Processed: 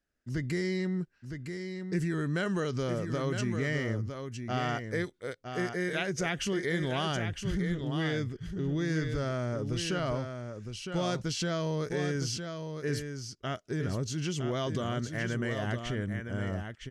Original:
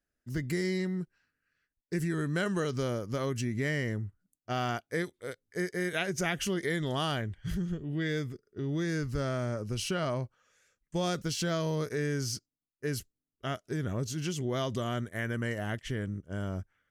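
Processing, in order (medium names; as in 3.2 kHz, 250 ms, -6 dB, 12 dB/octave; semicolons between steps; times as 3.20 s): low-pass 7.2 kHz 12 dB/octave; in parallel at -0.5 dB: peak limiter -28.5 dBFS, peak gain reduction 10.5 dB; on the sum: delay 960 ms -7 dB; trim -3.5 dB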